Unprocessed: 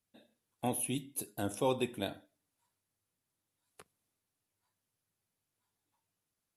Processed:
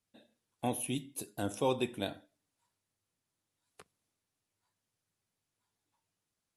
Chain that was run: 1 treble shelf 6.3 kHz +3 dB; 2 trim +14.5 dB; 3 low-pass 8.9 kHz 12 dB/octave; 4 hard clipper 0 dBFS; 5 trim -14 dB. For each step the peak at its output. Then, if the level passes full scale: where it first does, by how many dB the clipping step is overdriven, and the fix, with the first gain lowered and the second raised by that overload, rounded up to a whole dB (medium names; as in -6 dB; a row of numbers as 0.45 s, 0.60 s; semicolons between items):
-19.5 dBFS, -5.0 dBFS, -5.0 dBFS, -5.0 dBFS, -19.0 dBFS; nothing clips